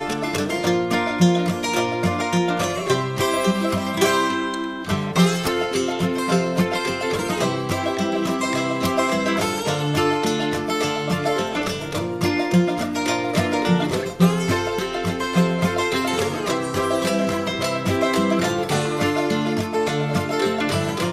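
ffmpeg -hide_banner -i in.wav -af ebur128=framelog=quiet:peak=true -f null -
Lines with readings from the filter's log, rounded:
Integrated loudness:
  I:         -21.4 LUFS
  Threshold: -31.4 LUFS
Loudness range:
  LRA:         1.2 LU
  Threshold: -41.4 LUFS
  LRA low:   -22.0 LUFS
  LRA high:  -20.9 LUFS
True peak:
  Peak:       -3.1 dBFS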